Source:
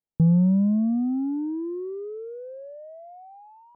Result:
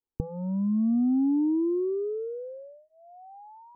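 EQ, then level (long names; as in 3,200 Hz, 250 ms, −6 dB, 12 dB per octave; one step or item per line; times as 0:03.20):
low-pass filter 1,100 Hz 24 dB per octave
high-frequency loss of the air 420 metres
phaser with its sweep stopped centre 630 Hz, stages 6
+5.5 dB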